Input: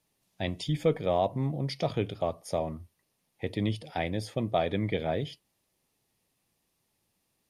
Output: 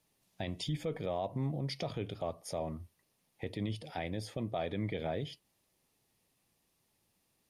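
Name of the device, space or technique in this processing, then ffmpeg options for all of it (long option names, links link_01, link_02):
stacked limiters: -af "alimiter=limit=-20dB:level=0:latency=1:release=36,alimiter=level_in=2.5dB:limit=-24dB:level=0:latency=1:release=271,volume=-2.5dB"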